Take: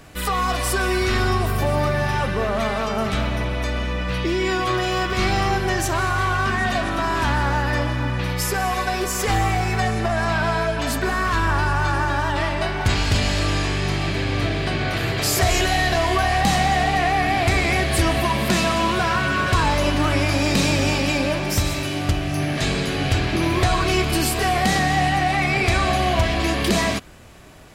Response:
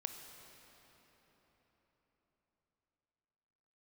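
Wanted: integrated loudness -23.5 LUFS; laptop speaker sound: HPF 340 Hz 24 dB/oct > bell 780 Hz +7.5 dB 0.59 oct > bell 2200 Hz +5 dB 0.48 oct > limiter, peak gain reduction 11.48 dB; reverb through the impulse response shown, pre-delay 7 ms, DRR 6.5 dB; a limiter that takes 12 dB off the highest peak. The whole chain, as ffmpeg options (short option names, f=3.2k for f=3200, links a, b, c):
-filter_complex "[0:a]alimiter=limit=-21dB:level=0:latency=1,asplit=2[a][b];[1:a]atrim=start_sample=2205,adelay=7[c];[b][c]afir=irnorm=-1:irlink=0,volume=-5dB[d];[a][d]amix=inputs=2:normalize=0,highpass=f=340:w=0.5412,highpass=f=340:w=1.3066,equalizer=f=780:t=o:w=0.59:g=7.5,equalizer=f=2.2k:t=o:w=0.48:g=5,volume=8.5dB,alimiter=limit=-16dB:level=0:latency=1"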